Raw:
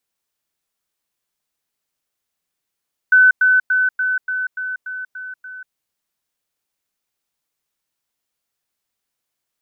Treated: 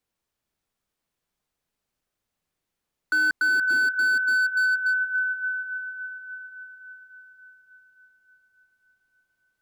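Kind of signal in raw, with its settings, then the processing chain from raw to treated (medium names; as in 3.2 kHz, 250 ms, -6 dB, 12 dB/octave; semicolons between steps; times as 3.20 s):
level ladder 1.51 kHz -7 dBFS, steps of -3 dB, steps 9, 0.19 s 0.10 s
tilt EQ -2 dB/octave; on a send: echo that smears into a reverb 495 ms, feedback 52%, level -9 dB; on the sum: slew-rate limiter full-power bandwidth 150 Hz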